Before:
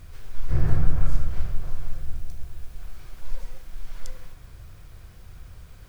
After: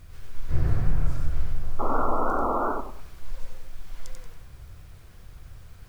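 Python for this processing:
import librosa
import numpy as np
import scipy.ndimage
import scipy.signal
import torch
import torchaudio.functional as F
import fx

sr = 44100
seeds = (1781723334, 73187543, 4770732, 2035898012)

y = fx.spec_paint(x, sr, seeds[0], shape='noise', start_s=1.79, length_s=0.93, low_hz=210.0, high_hz=1400.0, level_db=-25.0)
y = fx.echo_warbled(y, sr, ms=94, feedback_pct=32, rate_hz=2.8, cents=149, wet_db=-3.0)
y = y * librosa.db_to_amplitude(-3.0)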